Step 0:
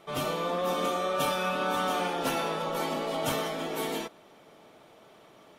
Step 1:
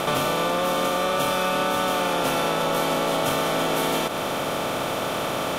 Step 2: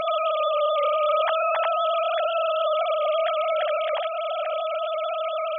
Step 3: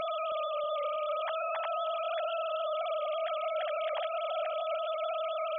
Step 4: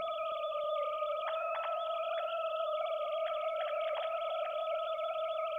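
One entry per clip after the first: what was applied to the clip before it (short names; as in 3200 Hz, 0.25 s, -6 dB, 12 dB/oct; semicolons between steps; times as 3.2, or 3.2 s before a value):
per-bin compression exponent 0.4; compressor, threshold -29 dBFS, peak gain reduction 8.5 dB; gain +9 dB
sine-wave speech
limiter -22.5 dBFS, peak gain reduction 9.5 dB; dark delay 0.319 s, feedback 56%, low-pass 620 Hz, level -8 dB; gain -4.5 dB
on a send at -9 dB: reverb RT60 1.5 s, pre-delay 3 ms; on the sum: added noise pink -69 dBFS; gain -3.5 dB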